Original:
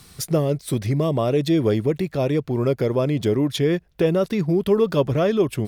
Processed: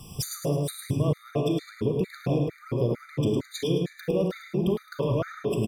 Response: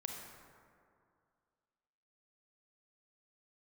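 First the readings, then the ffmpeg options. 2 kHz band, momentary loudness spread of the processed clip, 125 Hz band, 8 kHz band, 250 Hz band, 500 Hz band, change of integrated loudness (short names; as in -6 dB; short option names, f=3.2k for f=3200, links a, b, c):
-7.5 dB, 2 LU, -4.5 dB, -2.0 dB, -7.0 dB, -8.0 dB, -7.0 dB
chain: -filter_complex "[0:a]lowshelf=f=190:g=3.5,acompressor=threshold=-26dB:ratio=12,aecho=1:1:107|214|321|428|535:0.501|0.221|0.097|0.0427|0.0188[a];[1:a]atrim=start_sample=2205,afade=t=out:st=0.21:d=0.01,atrim=end_sample=9702[b];[a][b]afir=irnorm=-1:irlink=0,afftfilt=real='re*gt(sin(2*PI*2.2*pts/sr)*(1-2*mod(floor(b*sr/1024/1200),2)),0)':imag='im*gt(sin(2*PI*2.2*pts/sr)*(1-2*mod(floor(b*sr/1024/1200),2)),0)':win_size=1024:overlap=0.75,volume=6dB"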